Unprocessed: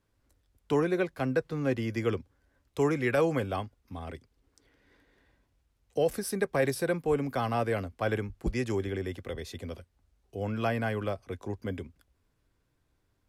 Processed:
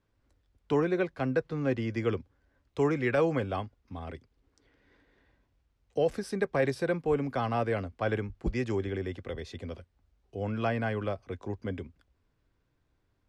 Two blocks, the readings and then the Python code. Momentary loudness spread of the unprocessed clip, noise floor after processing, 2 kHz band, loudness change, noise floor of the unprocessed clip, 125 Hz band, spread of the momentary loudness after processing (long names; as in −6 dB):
14 LU, −75 dBFS, −0.5 dB, −0.5 dB, −75 dBFS, 0.0 dB, 14 LU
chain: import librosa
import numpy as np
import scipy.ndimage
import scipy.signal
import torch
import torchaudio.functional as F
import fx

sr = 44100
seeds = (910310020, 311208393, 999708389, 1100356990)

y = fx.air_absorb(x, sr, metres=86.0)